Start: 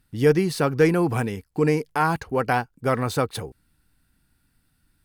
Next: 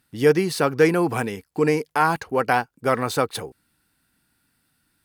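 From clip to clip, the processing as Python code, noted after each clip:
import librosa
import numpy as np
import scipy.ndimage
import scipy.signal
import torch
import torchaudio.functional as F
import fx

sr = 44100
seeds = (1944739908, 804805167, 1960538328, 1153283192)

y = fx.highpass(x, sr, hz=280.0, slope=6)
y = y * librosa.db_to_amplitude(3.0)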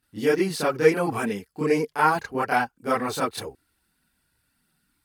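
y = fx.chorus_voices(x, sr, voices=4, hz=0.66, base_ms=29, depth_ms=2.8, mix_pct=70)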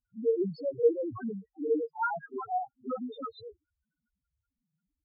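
y = fx.spec_topn(x, sr, count=1)
y = fx.vibrato(y, sr, rate_hz=0.62, depth_cents=28.0)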